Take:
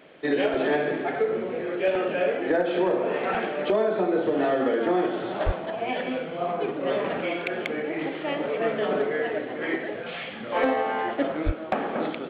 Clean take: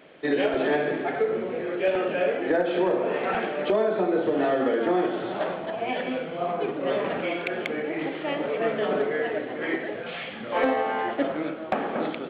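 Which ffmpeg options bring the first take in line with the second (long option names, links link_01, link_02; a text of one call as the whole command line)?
ffmpeg -i in.wav -filter_complex "[0:a]asplit=3[link_01][link_02][link_03];[link_01]afade=type=out:start_time=5.45:duration=0.02[link_04];[link_02]highpass=frequency=140:width=0.5412,highpass=frequency=140:width=1.3066,afade=type=in:start_time=5.45:duration=0.02,afade=type=out:start_time=5.57:duration=0.02[link_05];[link_03]afade=type=in:start_time=5.57:duration=0.02[link_06];[link_04][link_05][link_06]amix=inputs=3:normalize=0,asplit=3[link_07][link_08][link_09];[link_07]afade=type=out:start_time=11.45:duration=0.02[link_10];[link_08]highpass=frequency=140:width=0.5412,highpass=frequency=140:width=1.3066,afade=type=in:start_time=11.45:duration=0.02,afade=type=out:start_time=11.57:duration=0.02[link_11];[link_09]afade=type=in:start_time=11.57:duration=0.02[link_12];[link_10][link_11][link_12]amix=inputs=3:normalize=0" out.wav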